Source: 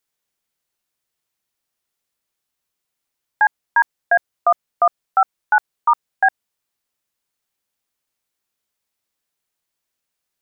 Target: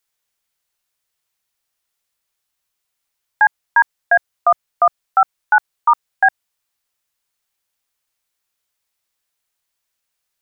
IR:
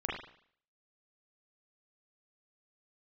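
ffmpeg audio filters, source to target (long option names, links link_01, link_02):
-af "equalizer=frequency=250:width_type=o:width=2.2:gain=-8,volume=3.5dB"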